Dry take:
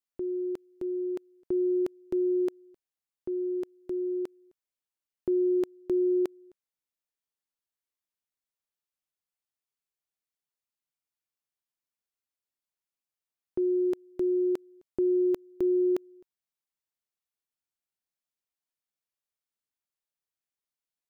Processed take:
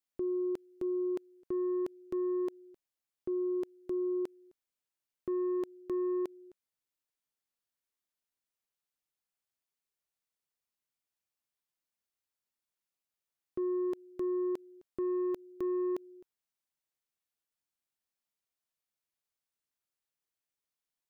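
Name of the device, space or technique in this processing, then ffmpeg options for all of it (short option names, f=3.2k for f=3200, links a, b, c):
soft clipper into limiter: -af "asoftclip=type=tanh:threshold=-24dB,alimiter=level_in=5.5dB:limit=-24dB:level=0:latency=1,volume=-5.5dB"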